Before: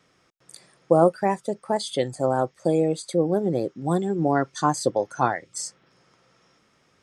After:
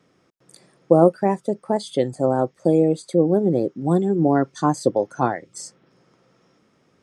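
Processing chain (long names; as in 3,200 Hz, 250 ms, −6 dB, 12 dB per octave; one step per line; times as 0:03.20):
parametric band 260 Hz +10 dB 3 octaves
level −4 dB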